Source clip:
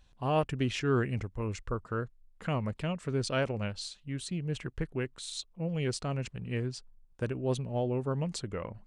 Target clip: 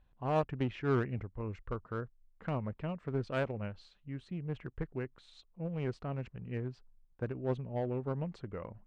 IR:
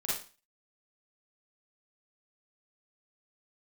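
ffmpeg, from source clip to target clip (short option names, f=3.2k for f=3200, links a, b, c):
-filter_complex "[0:a]lowpass=1.9k,asplit=2[a][b];[b]acrusher=bits=3:mix=0:aa=0.5,volume=-9dB[c];[a][c]amix=inputs=2:normalize=0,volume=-5dB"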